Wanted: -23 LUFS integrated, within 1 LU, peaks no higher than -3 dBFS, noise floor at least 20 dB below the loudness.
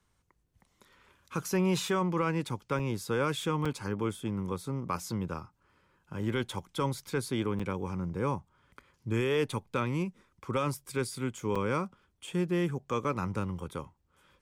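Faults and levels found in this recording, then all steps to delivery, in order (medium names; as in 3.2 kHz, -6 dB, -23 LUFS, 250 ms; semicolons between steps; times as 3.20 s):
dropouts 5; longest dropout 5.6 ms; loudness -33.0 LUFS; peak level -18.5 dBFS; loudness target -23.0 LUFS
-> interpolate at 2.79/3.65/7.59/11.55/13.04 s, 5.6 ms; trim +10 dB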